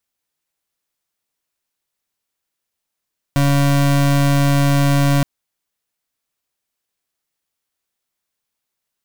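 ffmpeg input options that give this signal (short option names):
-f lavfi -i "aevalsrc='0.2*(2*lt(mod(141*t,1),0.33)-1)':d=1.87:s=44100"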